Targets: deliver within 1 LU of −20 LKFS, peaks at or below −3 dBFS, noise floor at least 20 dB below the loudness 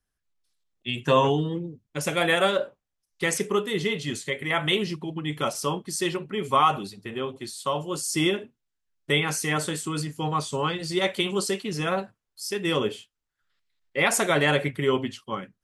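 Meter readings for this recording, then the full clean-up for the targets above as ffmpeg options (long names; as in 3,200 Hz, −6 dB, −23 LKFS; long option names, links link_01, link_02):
integrated loudness −26.0 LKFS; sample peak −7.5 dBFS; target loudness −20.0 LKFS
→ -af "volume=6dB,alimiter=limit=-3dB:level=0:latency=1"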